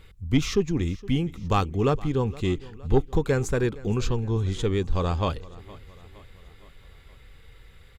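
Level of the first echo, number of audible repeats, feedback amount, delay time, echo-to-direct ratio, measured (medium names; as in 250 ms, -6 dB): -20.5 dB, 3, 55%, 465 ms, -19.0 dB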